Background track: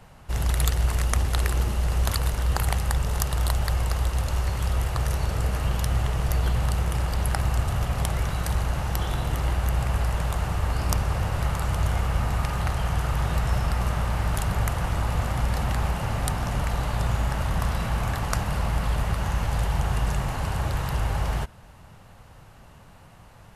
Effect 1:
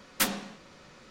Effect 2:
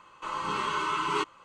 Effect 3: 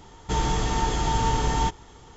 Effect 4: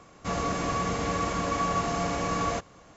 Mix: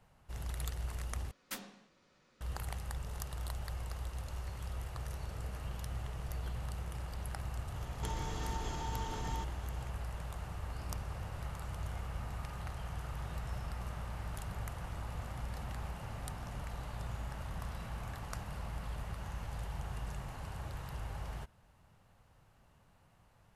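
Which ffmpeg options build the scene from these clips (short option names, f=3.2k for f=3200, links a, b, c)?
-filter_complex "[0:a]volume=-16.5dB[a];[3:a]acompressor=threshold=-30dB:ratio=6:attack=3.2:release=140:knee=1:detection=peak[b];[a]asplit=2[c][d];[c]atrim=end=1.314[e];[1:a]atrim=end=1.1,asetpts=PTS-STARTPTS,volume=-16.5dB[f];[d]atrim=start=2.406[g];[b]atrim=end=2.16,asetpts=PTS-STARTPTS,volume=-6.5dB,afade=t=in:d=0.004:c=hsin,afade=t=out:st=2.156:d=0.004:c=hsin,adelay=7740[h];[e][f]acrossfade=d=0.004:c1=hsin:c2=hsin[i];[i][g]acrossfade=d=0.004:c1=hsin:c2=hsin[j];[j][h]amix=inputs=2:normalize=0"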